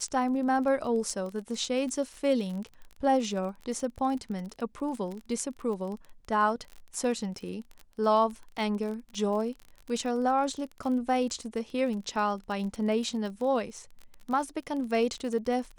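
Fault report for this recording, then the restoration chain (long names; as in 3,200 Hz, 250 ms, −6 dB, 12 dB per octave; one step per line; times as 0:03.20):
surface crackle 31 per second −35 dBFS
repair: click removal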